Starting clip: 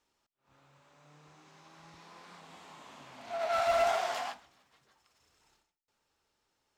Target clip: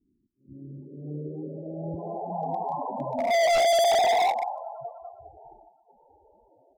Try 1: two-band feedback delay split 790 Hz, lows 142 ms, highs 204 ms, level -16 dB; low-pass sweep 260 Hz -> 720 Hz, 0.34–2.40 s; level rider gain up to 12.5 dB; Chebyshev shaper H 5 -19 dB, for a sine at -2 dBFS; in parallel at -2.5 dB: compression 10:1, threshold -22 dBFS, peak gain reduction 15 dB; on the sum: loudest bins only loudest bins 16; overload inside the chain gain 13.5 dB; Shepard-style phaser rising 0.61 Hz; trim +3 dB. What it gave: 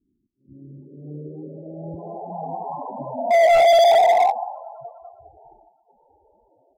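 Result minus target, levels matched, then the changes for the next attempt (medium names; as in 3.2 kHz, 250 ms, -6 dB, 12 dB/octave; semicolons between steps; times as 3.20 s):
overload inside the chain: distortion -5 dB
change: overload inside the chain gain 21.5 dB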